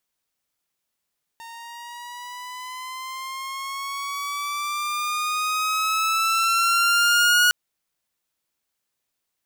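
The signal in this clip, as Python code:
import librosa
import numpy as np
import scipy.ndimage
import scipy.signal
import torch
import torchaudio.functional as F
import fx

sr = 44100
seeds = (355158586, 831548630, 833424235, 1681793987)

y = fx.riser_tone(sr, length_s=6.11, level_db=-11.5, wave='saw', hz=917.0, rise_st=8.0, swell_db=23.5)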